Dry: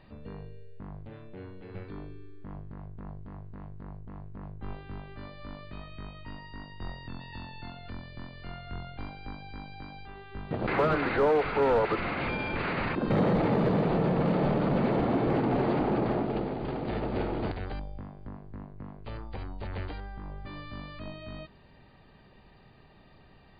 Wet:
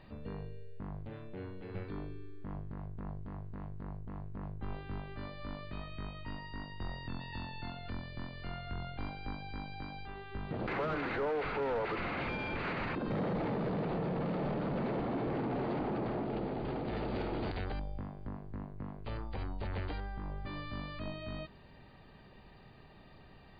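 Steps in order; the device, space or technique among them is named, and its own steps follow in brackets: soft clipper into limiter (soft clip -20.5 dBFS, distortion -18 dB; limiter -29.5 dBFS, peak gain reduction 8 dB); 16.96–17.64 high shelf 3300 Hz +8.5 dB

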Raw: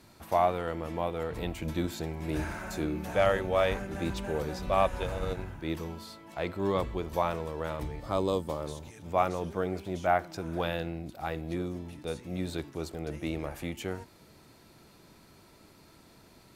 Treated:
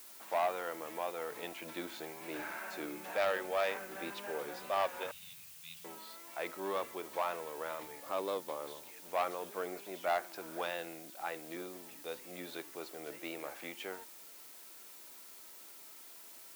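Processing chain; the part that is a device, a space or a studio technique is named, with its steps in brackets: 5.11–5.85 elliptic band-stop 150–2800 Hz; tape answering machine (BPF 330–2800 Hz; soft clip -20.5 dBFS, distortion -15 dB; wow and flutter; white noise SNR 23 dB); tilt +2.5 dB/oct; gain -3 dB

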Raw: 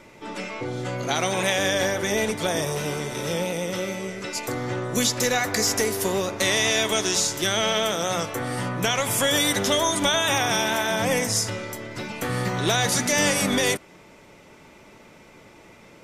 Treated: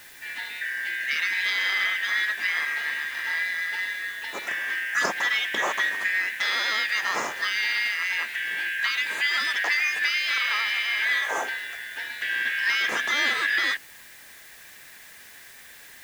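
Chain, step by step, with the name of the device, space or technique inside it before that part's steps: 4.41–5.06 resonant high shelf 3400 Hz +6.5 dB, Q 1.5; split-band scrambled radio (four-band scrambler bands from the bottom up 4123; BPF 310–2900 Hz; white noise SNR 22 dB)

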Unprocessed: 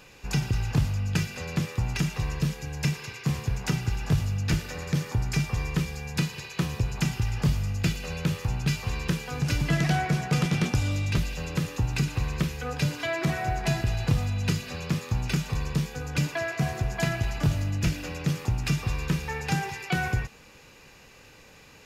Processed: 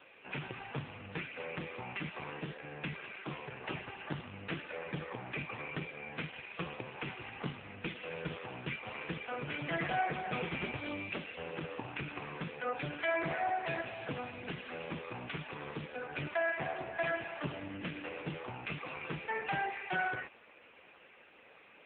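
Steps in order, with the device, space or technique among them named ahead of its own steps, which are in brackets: telephone (BPF 340–3600 Hz; soft clip -24 dBFS, distortion -19 dB; gain +1 dB; AMR-NB 5.15 kbps 8000 Hz)

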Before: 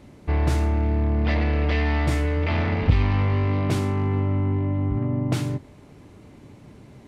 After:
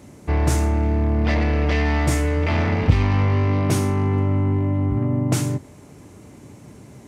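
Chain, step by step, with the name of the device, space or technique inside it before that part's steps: budget condenser microphone (HPF 62 Hz; resonant high shelf 5200 Hz +7 dB, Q 1.5); 3.47–4.18 notch 7500 Hz, Q 7.5; gain +3.5 dB

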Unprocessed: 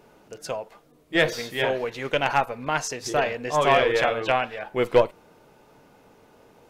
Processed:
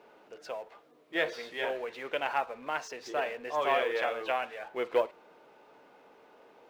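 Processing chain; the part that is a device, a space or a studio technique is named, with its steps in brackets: phone line with mismatched companding (BPF 360–3600 Hz; G.711 law mismatch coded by mu); gain -8.5 dB

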